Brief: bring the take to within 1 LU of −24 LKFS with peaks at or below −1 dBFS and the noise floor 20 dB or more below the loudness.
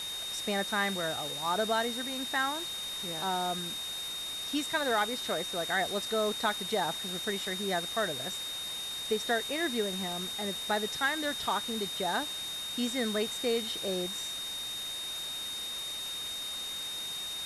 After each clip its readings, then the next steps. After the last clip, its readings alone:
interfering tone 3,700 Hz; level of the tone −36 dBFS; background noise floor −38 dBFS; target noise floor −52 dBFS; integrated loudness −32.0 LKFS; sample peak −16.0 dBFS; target loudness −24.0 LKFS
→ notch filter 3,700 Hz, Q 30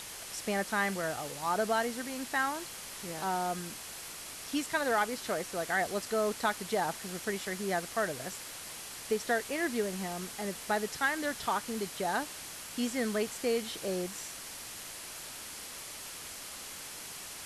interfering tone none found; background noise floor −45 dBFS; target noise floor −54 dBFS
→ broadband denoise 9 dB, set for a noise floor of −45 dBFS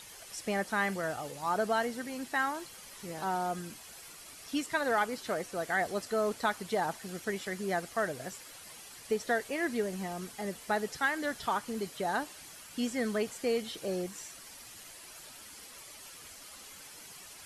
background noise floor −50 dBFS; target noise floor −54 dBFS
→ broadband denoise 6 dB, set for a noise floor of −50 dBFS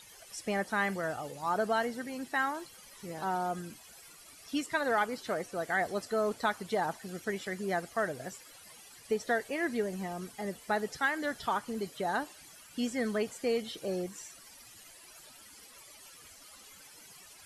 background noise floor −54 dBFS; integrated loudness −34.0 LKFS; sample peak −17.0 dBFS; target loudness −24.0 LKFS
→ level +10 dB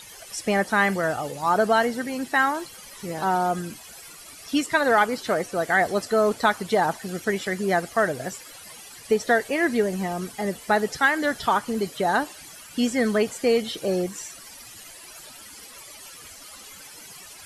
integrated loudness −24.0 LKFS; sample peak −7.0 dBFS; background noise floor −44 dBFS

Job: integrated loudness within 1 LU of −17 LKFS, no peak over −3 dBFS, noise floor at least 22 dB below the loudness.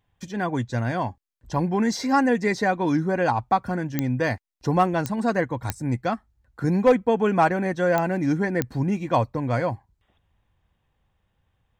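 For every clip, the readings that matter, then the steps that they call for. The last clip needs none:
number of clicks 5; integrated loudness −24.0 LKFS; sample peak −8.0 dBFS; target loudness −17.0 LKFS
→ click removal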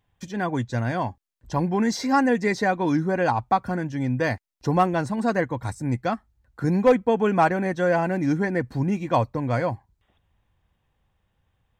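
number of clicks 0; integrated loudness −24.0 LKFS; sample peak −9.0 dBFS; target loudness −17.0 LKFS
→ level +7 dB
brickwall limiter −3 dBFS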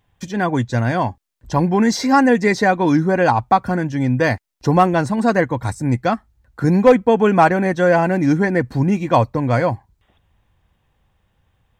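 integrated loudness −17.0 LKFS; sample peak −3.0 dBFS; background noise floor −66 dBFS

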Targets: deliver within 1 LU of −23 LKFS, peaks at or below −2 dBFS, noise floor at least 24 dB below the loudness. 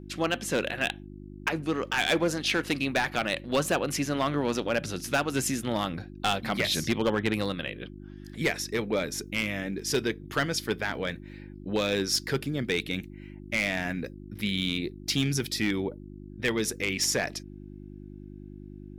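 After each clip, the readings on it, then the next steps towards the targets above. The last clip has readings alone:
share of clipped samples 0.5%; peaks flattened at −18.5 dBFS; mains hum 50 Hz; hum harmonics up to 350 Hz; level of the hum −41 dBFS; integrated loudness −29.0 LKFS; sample peak −18.5 dBFS; target loudness −23.0 LKFS
→ clipped peaks rebuilt −18.5 dBFS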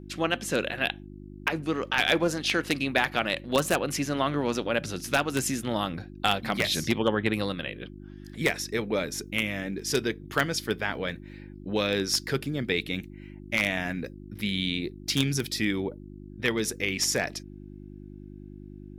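share of clipped samples 0.0%; mains hum 50 Hz; hum harmonics up to 350 Hz; level of the hum −41 dBFS
→ hum removal 50 Hz, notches 7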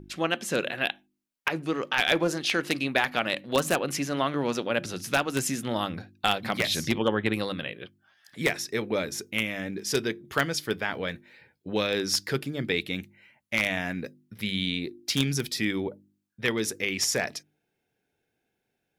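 mains hum none found; integrated loudness −28.0 LKFS; sample peak −9.0 dBFS; target loudness −23.0 LKFS
→ level +5 dB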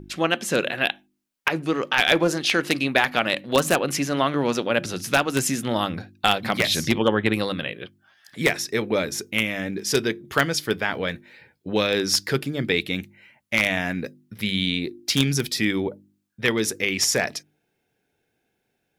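integrated loudness −23.0 LKFS; sample peak −4.0 dBFS; background noise floor −75 dBFS

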